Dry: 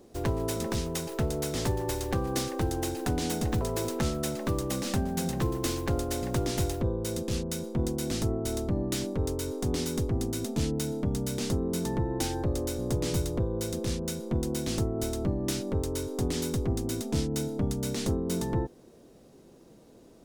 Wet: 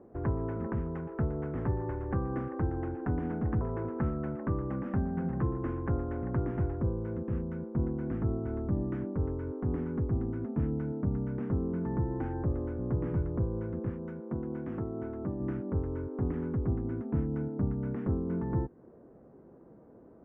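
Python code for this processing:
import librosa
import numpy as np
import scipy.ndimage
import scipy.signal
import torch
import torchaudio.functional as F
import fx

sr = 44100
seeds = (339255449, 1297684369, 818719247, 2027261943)

y = fx.highpass(x, sr, hz=220.0, slope=6, at=(13.89, 15.4))
y = scipy.signal.sosfilt(scipy.signal.cheby2(4, 50, 3900.0, 'lowpass', fs=sr, output='sos'), y)
y = fx.dynamic_eq(y, sr, hz=610.0, q=0.92, threshold_db=-46.0, ratio=4.0, max_db=-7)
y = scipy.signal.sosfilt(scipy.signal.butter(2, 45.0, 'highpass', fs=sr, output='sos'), y)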